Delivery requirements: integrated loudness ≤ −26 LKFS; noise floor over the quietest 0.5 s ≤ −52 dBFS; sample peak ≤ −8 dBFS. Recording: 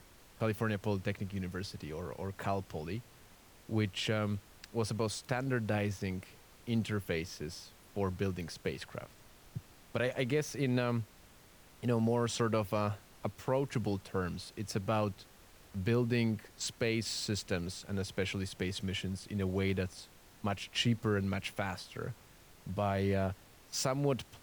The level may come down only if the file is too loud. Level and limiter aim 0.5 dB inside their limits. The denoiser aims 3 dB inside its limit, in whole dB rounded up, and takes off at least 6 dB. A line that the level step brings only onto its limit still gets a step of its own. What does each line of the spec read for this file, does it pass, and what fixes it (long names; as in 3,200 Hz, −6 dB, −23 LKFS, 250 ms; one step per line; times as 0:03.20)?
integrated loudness −35.5 LKFS: in spec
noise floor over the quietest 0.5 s −59 dBFS: in spec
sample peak −18.0 dBFS: in spec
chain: no processing needed